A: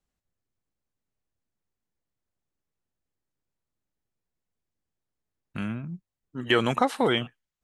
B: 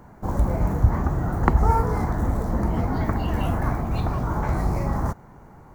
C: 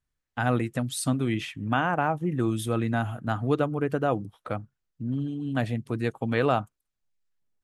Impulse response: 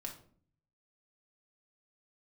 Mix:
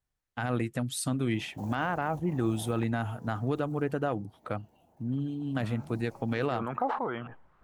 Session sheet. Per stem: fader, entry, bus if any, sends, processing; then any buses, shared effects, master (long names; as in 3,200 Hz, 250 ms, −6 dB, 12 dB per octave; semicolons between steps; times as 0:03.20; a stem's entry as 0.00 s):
−12.5 dB, 0.00 s, no send, auto-filter low-pass saw up 2.2 Hz 760–1,600 Hz; level that may fall only so fast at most 51 dB per second
0:02.65 −3.5 dB → 0:02.98 −12.5 dB → 0:03.78 −12.5 dB → 0:04.08 −24 dB → 0:05.12 −24 dB → 0:05.88 −12.5 dB, 1.35 s, no send, downward compressor 6 to 1, threshold −28 dBFS, peak gain reduction 16.5 dB; high-pass filter 580 Hz 6 dB per octave; flat-topped bell 1,500 Hz −15.5 dB 1.2 octaves
+0.5 dB, 0.00 s, no send, harmonic generator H 3 −20 dB, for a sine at −10 dBFS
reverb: not used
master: brickwall limiter −18 dBFS, peak gain reduction 9 dB